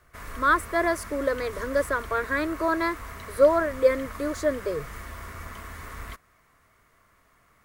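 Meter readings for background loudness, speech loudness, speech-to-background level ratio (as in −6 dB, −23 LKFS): −40.0 LKFS, −25.5 LKFS, 14.5 dB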